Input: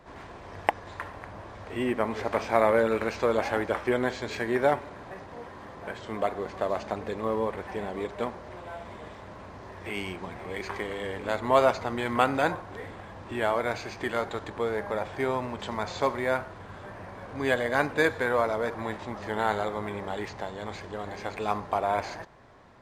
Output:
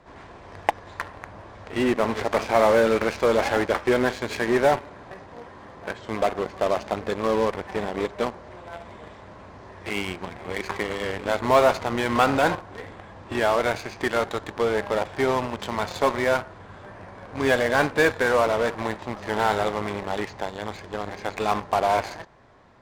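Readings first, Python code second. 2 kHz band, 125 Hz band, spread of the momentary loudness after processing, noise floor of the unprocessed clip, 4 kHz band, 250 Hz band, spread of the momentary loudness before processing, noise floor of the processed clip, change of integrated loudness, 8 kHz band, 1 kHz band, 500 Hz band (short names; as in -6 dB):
+4.5 dB, +4.0 dB, 21 LU, -45 dBFS, +6.5 dB, +5.0 dB, 18 LU, -45 dBFS, +5.0 dB, +8.0 dB, +4.5 dB, +5.0 dB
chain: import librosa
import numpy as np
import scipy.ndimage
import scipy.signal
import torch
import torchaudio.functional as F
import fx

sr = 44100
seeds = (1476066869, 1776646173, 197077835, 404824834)

p1 = scipy.signal.sosfilt(scipy.signal.butter(2, 9500.0, 'lowpass', fs=sr, output='sos'), x)
p2 = fx.fuzz(p1, sr, gain_db=30.0, gate_db=-33.0)
y = p1 + F.gain(torch.from_numpy(p2), -9.0).numpy()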